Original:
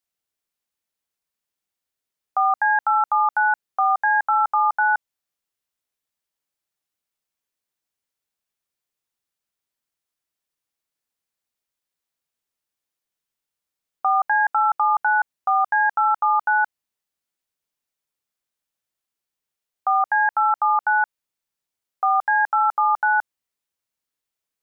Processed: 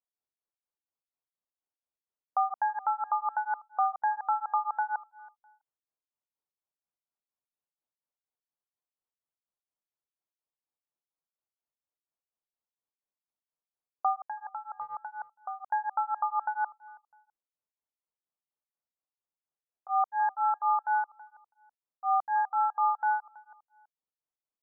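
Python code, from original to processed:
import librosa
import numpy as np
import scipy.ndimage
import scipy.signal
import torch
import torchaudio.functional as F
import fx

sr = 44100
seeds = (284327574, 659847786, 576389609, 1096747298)

y = scipy.signal.sosfilt(scipy.signal.butter(4, 1100.0, 'lowpass', fs=sr, output='sos'), x)
y = fx.low_shelf(y, sr, hz=480.0, db=-9.0)
y = fx.level_steps(y, sr, step_db=11, at=(14.16, 15.69))
y = fx.echo_feedback(y, sr, ms=327, feedback_pct=23, wet_db=-22)
y = y * np.abs(np.cos(np.pi * 4.2 * np.arange(len(y)) / sr))
y = y * 10.0 ** (-1.5 / 20.0)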